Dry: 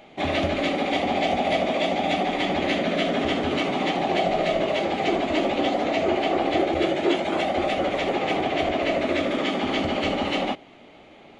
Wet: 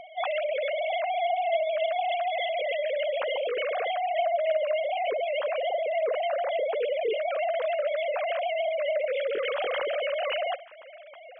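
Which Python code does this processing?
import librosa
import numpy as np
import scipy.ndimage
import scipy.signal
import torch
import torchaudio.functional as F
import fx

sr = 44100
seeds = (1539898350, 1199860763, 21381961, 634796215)

p1 = fx.sine_speech(x, sr)
p2 = fx.over_compress(p1, sr, threshold_db=-32.0, ratio=-1.0)
p3 = p1 + (p2 * 10.0 ** (1.0 / 20.0))
y = p3 * 10.0 ** (-7.0 / 20.0)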